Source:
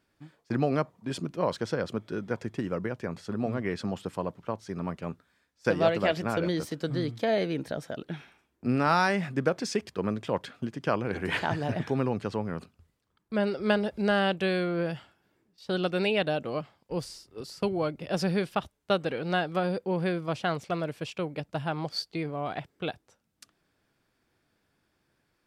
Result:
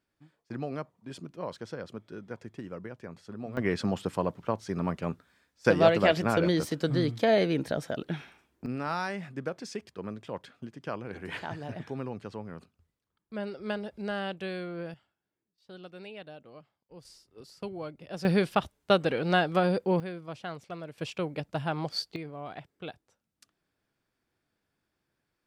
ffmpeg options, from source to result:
ffmpeg -i in.wav -af "asetnsamples=nb_out_samples=441:pad=0,asendcmd='3.57 volume volume 3dB;8.66 volume volume -8.5dB;14.94 volume volume -18dB;17.05 volume volume -9.5dB;18.25 volume volume 3dB;20 volume volume -9.5dB;20.98 volume volume 0dB;22.16 volume volume -7.5dB',volume=-9dB" out.wav

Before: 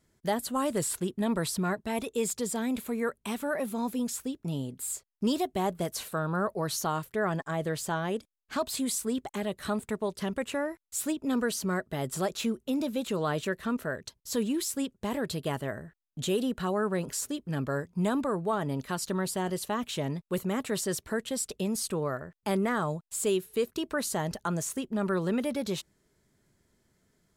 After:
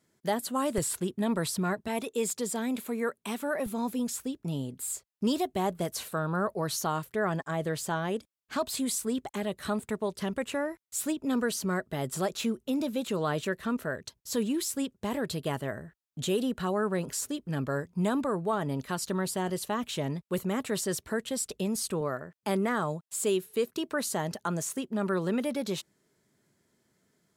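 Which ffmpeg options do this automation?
ffmpeg -i in.wav -af "asetnsamples=nb_out_samples=441:pad=0,asendcmd='0.78 highpass f 63;1.88 highpass f 170;3.66 highpass f 45;22.01 highpass f 130',highpass=140" out.wav

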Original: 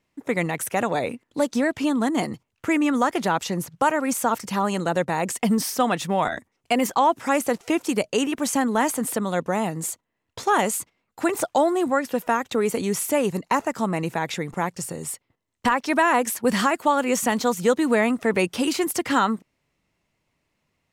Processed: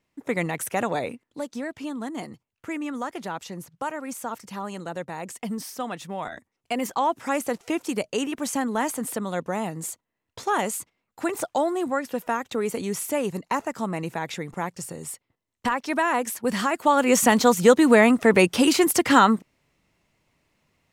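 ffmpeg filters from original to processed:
ffmpeg -i in.wav -af "volume=12.5dB,afade=type=out:start_time=0.92:duration=0.5:silence=0.398107,afade=type=in:start_time=6.2:duration=0.94:silence=0.501187,afade=type=in:start_time=16.65:duration=0.56:silence=0.375837" out.wav

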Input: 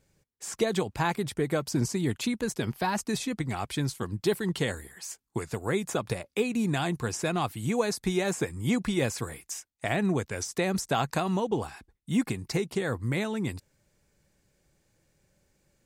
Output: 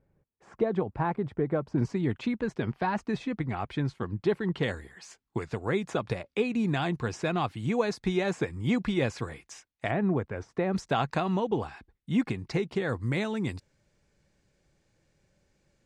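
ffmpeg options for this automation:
ffmpeg -i in.wav -af "asetnsamples=nb_out_samples=441:pad=0,asendcmd='1.78 lowpass f 2300;4.63 lowpass f 3900;9.91 lowpass f 1500;10.73 lowpass f 3700;12.89 lowpass f 6100',lowpass=1200" out.wav

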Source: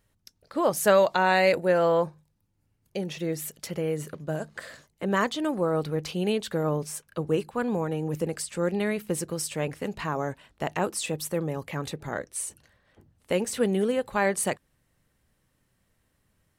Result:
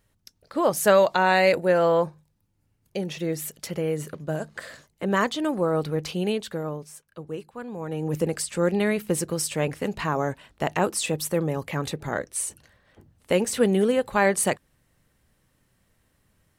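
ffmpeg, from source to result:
ffmpeg -i in.wav -af "volume=14.5dB,afade=type=out:start_time=6.13:duration=0.72:silence=0.298538,afade=type=in:start_time=7.75:duration=0.42:silence=0.237137" out.wav

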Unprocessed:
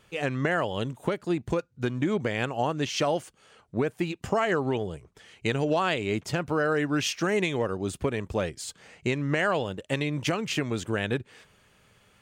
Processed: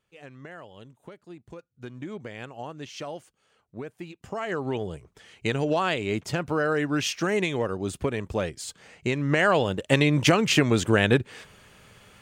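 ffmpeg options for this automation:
ffmpeg -i in.wav -af "volume=8dB,afade=type=in:start_time=1.48:duration=0.49:silence=0.473151,afade=type=in:start_time=4.26:duration=0.65:silence=0.281838,afade=type=in:start_time=9.08:duration=0.91:silence=0.421697" out.wav

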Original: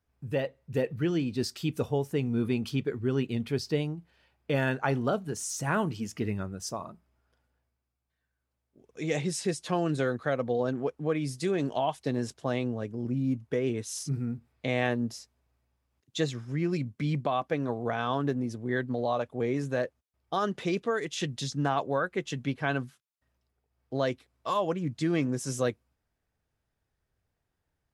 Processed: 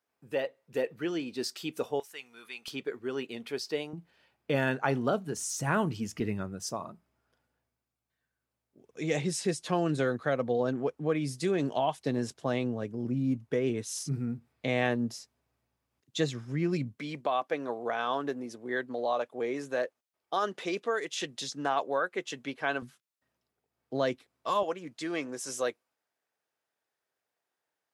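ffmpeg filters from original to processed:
ffmpeg -i in.wav -af "asetnsamples=nb_out_samples=441:pad=0,asendcmd='2 highpass f 1500;2.68 highpass f 430;3.93 highpass f 140;5.38 highpass f 41;6.2 highpass f 110;16.98 highpass f 370;22.82 highpass f 170;24.63 highpass f 460',highpass=360" out.wav

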